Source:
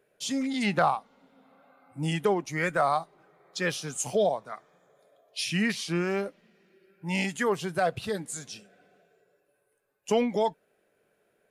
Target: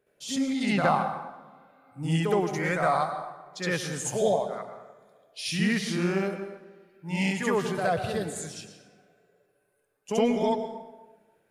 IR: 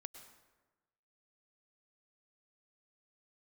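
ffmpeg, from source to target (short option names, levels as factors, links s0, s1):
-filter_complex "[0:a]lowshelf=f=180:g=6,asplit=2[s0][s1];[1:a]atrim=start_sample=2205,adelay=67[s2];[s1][s2]afir=irnorm=-1:irlink=0,volume=3.55[s3];[s0][s3]amix=inputs=2:normalize=0,volume=0.473"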